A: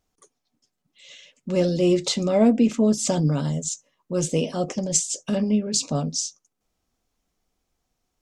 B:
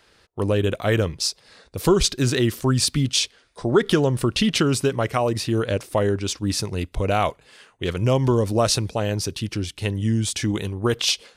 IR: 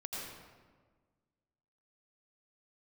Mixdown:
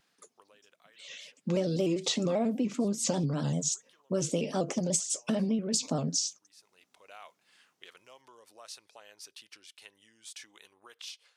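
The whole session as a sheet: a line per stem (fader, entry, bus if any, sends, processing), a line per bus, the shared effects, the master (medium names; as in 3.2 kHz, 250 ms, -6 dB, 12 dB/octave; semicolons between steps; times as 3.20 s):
0.0 dB, 0.00 s, no send, compression 16:1, threshold -25 dBFS, peak gain reduction 13.5 dB; high-pass 140 Hz 24 dB/octave; vibrato with a chosen wave square 5.1 Hz, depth 100 cents
-14.5 dB, 0.00 s, no send, compression 6:1, threshold -26 dBFS, peak gain reduction 14 dB; high-pass 930 Hz 12 dB/octave; auto duck -14 dB, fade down 1.05 s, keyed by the first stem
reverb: none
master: none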